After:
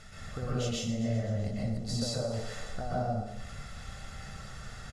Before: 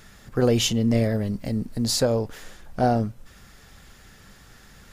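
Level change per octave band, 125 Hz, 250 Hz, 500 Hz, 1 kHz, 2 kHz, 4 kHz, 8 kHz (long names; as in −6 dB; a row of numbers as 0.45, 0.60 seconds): −6.5, −11.0, −11.5, −9.5, −7.0, −10.5, −10.5 decibels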